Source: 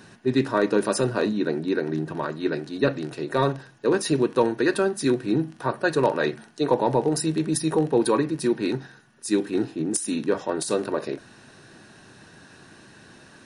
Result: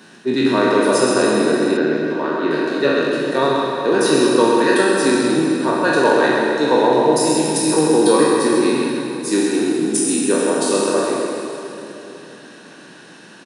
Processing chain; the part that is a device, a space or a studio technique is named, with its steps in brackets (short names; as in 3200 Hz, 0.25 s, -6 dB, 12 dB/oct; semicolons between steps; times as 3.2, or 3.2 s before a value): spectral trails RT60 1.04 s; PA in a hall (HPF 170 Hz 24 dB/oct; bell 3200 Hz +3.5 dB 0.47 oct; echo 0.131 s -7 dB; reverb RT60 3.3 s, pre-delay 58 ms, DRR 2 dB); 1.77–2.51 air absorption 120 m; gain +2 dB